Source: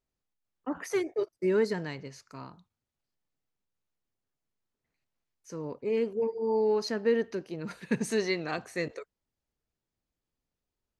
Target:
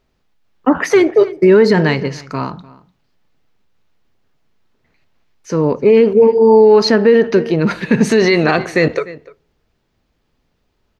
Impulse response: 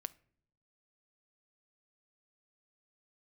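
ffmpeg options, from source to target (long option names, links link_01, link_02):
-filter_complex "[0:a]asplit=2[link_01][link_02];[link_02]adelay=297.4,volume=-21dB,highshelf=frequency=4000:gain=-6.69[link_03];[link_01][link_03]amix=inputs=2:normalize=0,asplit=2[link_04][link_05];[1:a]atrim=start_sample=2205,asetrate=57330,aresample=44100,lowpass=5000[link_06];[link_05][link_06]afir=irnorm=-1:irlink=0,volume=14dB[link_07];[link_04][link_07]amix=inputs=2:normalize=0,alimiter=level_in=12.5dB:limit=-1dB:release=50:level=0:latency=1,volume=-1dB"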